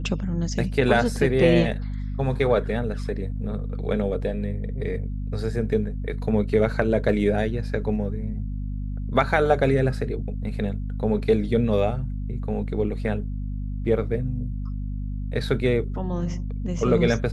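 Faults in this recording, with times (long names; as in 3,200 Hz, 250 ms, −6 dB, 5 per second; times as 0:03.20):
mains hum 50 Hz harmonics 5 −29 dBFS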